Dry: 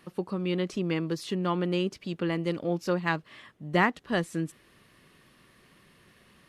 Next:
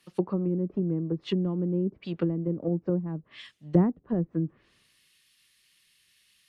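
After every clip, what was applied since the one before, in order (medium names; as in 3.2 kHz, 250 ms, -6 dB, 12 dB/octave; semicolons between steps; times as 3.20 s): low-pass that closes with the level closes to 310 Hz, closed at -25.5 dBFS; three bands expanded up and down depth 100%; trim +3.5 dB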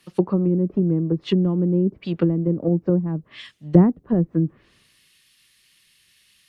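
bass shelf 330 Hz +3 dB; trim +6 dB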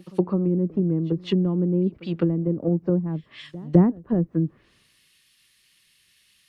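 pre-echo 208 ms -22 dB; trim -2.5 dB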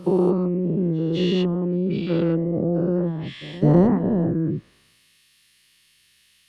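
every event in the spectrogram widened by 240 ms; trim -3.5 dB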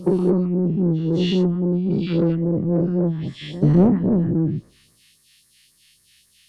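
phase shifter stages 2, 3.7 Hz, lowest notch 540–2800 Hz; in parallel at -4.5 dB: saturation -21 dBFS, distortion -10 dB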